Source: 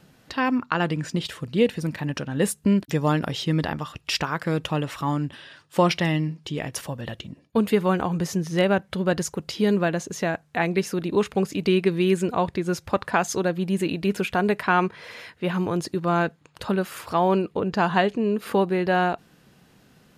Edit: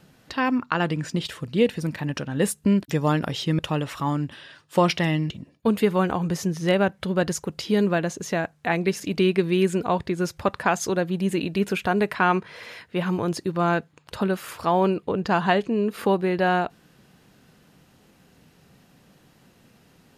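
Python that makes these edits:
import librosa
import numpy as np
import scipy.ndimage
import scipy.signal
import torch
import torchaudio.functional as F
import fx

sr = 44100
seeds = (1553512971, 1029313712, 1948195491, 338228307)

y = fx.edit(x, sr, fx.cut(start_s=3.59, length_s=1.01),
    fx.cut(start_s=6.31, length_s=0.89),
    fx.cut(start_s=10.9, length_s=0.58), tone=tone)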